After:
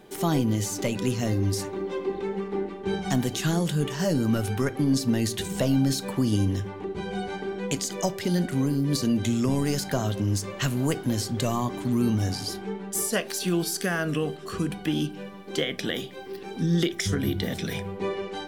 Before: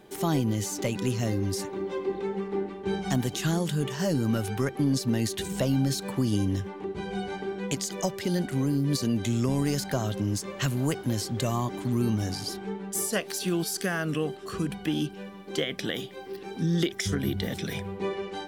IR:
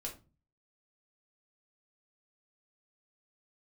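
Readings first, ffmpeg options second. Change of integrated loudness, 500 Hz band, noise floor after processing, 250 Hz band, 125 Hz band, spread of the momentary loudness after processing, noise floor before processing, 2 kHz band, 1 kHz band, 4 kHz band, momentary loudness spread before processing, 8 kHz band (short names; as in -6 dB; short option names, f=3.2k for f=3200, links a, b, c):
+2.0 dB, +1.5 dB, -39 dBFS, +2.5 dB, +1.5 dB, 7 LU, -42 dBFS, +2.0 dB, +2.0 dB, +2.0 dB, 7 LU, +2.0 dB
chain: -filter_complex "[0:a]asplit=2[a][b];[1:a]atrim=start_sample=2205[c];[b][c]afir=irnorm=-1:irlink=0,volume=-7.5dB[d];[a][d]amix=inputs=2:normalize=0"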